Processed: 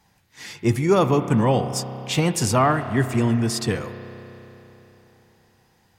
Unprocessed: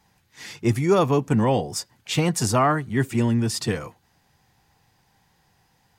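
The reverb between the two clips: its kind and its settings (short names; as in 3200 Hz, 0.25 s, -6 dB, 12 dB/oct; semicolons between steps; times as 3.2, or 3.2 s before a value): spring tank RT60 3.6 s, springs 31 ms, chirp 50 ms, DRR 9.5 dB; gain +1 dB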